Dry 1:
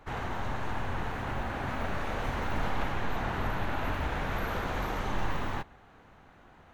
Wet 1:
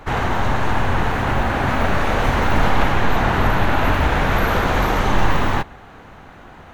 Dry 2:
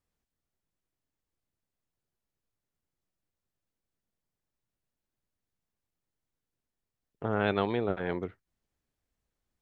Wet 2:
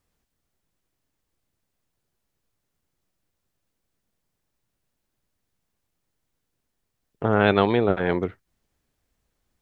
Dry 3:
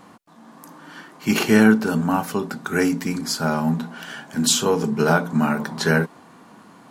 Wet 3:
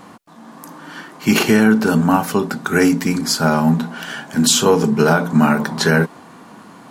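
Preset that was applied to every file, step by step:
boost into a limiter +8.5 dB
normalise the peak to −3 dBFS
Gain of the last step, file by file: +6.5, +1.0, −2.0 decibels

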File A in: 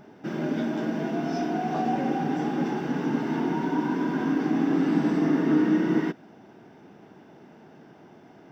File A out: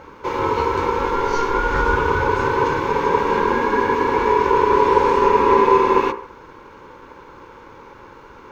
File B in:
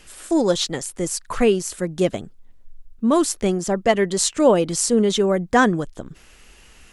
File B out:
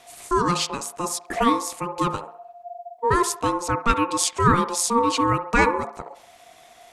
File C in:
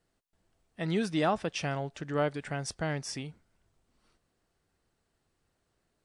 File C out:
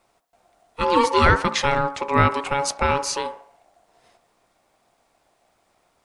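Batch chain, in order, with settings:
mains-hum notches 60/120/180/240/300/360/420/480/540 Hz
ring modulation 700 Hz
delay with a band-pass on its return 68 ms, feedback 44%, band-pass 1,000 Hz, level −12.5 dB
normalise the peak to −1.5 dBFS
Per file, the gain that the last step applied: +12.0, +0.5, +15.0 decibels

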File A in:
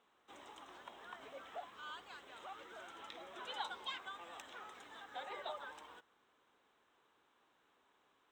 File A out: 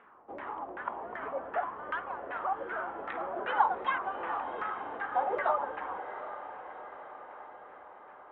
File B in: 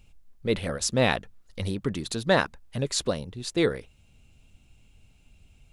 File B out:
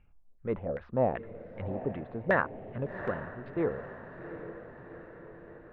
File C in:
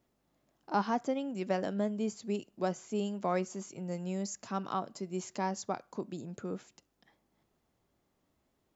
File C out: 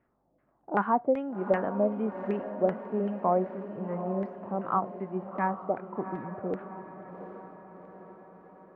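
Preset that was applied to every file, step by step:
low-pass filter 2,900 Hz 24 dB per octave
auto-filter low-pass saw down 2.6 Hz 500–1,900 Hz
on a send: feedback delay with all-pass diffusion 756 ms, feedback 59%, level −11 dB
on the sum: normalise the peak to −12 dBFS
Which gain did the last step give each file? +13.0, −7.5, +2.0 decibels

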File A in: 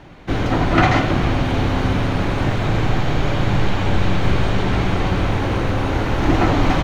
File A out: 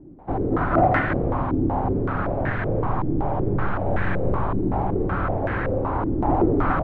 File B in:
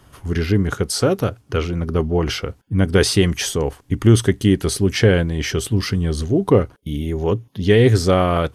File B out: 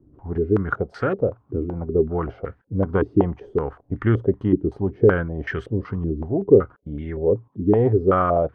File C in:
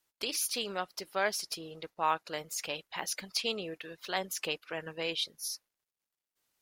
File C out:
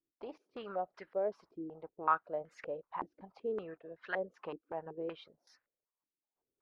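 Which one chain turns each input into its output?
low-pass on a step sequencer 5.3 Hz 320–1,700 Hz
level −7 dB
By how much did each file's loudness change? −4.0, −3.5, −5.5 LU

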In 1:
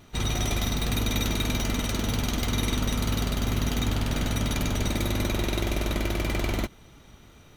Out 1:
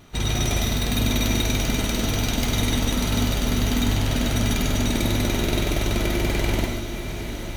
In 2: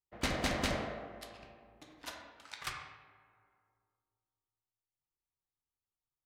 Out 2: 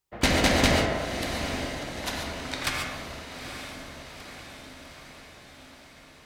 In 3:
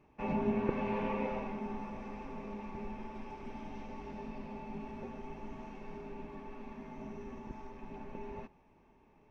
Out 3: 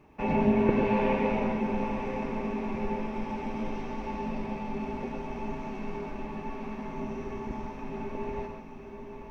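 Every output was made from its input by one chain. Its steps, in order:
dynamic equaliser 1,200 Hz, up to −6 dB, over −57 dBFS, Q 4.4
on a send: feedback delay with all-pass diffusion 881 ms, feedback 62%, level −9.5 dB
on the sum: reverb whose tail is shaped and stops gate 160 ms rising, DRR 3 dB
normalise the peak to −9 dBFS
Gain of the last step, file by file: +2.5, +11.5, +7.5 decibels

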